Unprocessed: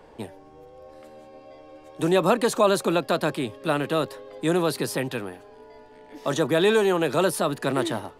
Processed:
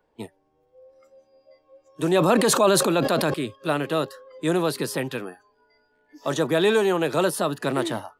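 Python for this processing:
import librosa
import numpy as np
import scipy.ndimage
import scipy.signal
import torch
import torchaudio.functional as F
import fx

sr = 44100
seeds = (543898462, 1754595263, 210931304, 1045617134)

y = fx.noise_reduce_blind(x, sr, reduce_db=19)
y = fx.sustainer(y, sr, db_per_s=24.0, at=(2.1, 3.34))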